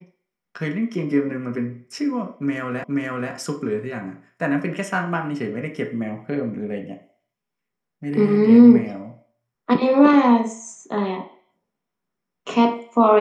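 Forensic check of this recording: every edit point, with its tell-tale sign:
2.84 repeat of the last 0.48 s

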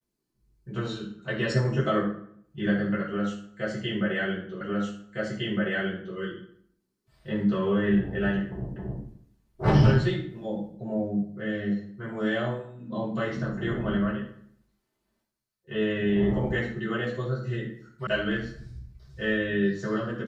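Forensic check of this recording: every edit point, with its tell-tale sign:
4.61 repeat of the last 1.56 s
8.76 repeat of the last 0.27 s
18.07 sound cut off

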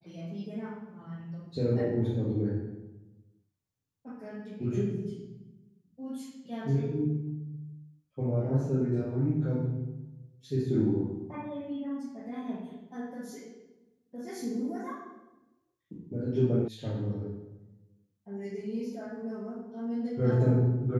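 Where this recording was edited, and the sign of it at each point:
16.68 sound cut off

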